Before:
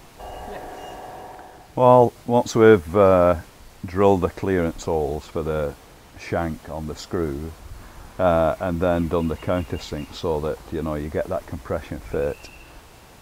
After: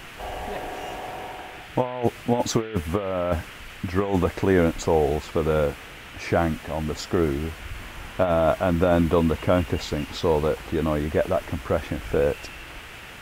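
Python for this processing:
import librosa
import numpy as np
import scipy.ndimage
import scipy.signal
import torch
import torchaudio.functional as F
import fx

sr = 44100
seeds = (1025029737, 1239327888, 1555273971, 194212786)

y = fx.over_compress(x, sr, threshold_db=-19.0, ratio=-0.5)
y = fx.dmg_noise_band(y, sr, seeds[0], low_hz=1200.0, high_hz=3100.0, level_db=-44.0)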